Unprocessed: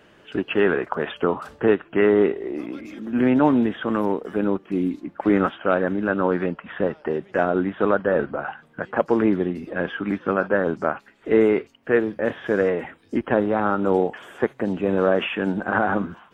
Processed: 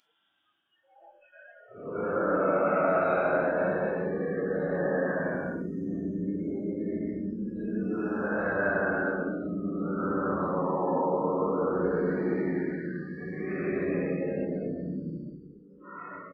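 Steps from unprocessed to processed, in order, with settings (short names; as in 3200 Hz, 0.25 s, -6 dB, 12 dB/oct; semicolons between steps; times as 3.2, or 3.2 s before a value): echo 0.389 s -20 dB; Paulstretch 15×, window 0.05 s, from 5.52; spectral noise reduction 28 dB; gain -7.5 dB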